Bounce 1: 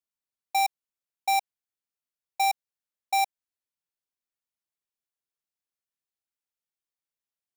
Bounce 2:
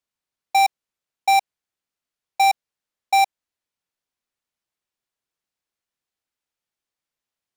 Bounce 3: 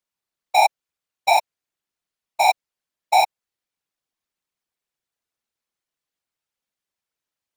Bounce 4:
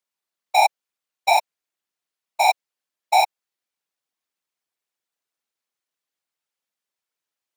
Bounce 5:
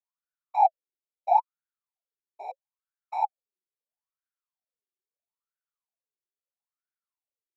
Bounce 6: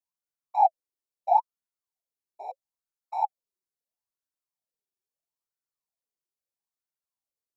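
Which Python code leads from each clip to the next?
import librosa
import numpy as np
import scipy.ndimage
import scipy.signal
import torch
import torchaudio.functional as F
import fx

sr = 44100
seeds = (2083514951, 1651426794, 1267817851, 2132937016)

y1 = fx.high_shelf(x, sr, hz=8800.0, db=-10.0)
y1 = y1 * 10.0 ** (8.0 / 20.0)
y2 = fx.whisperise(y1, sr, seeds[0])
y3 = fx.highpass(y2, sr, hz=310.0, slope=6)
y4 = fx.wah_lfo(y3, sr, hz=0.76, low_hz=360.0, high_hz=1500.0, q=12.0)
y4 = y4 * 10.0 ** (2.0 / 20.0)
y5 = fx.band_shelf(y4, sr, hz=2100.0, db=-8.0, octaves=1.7)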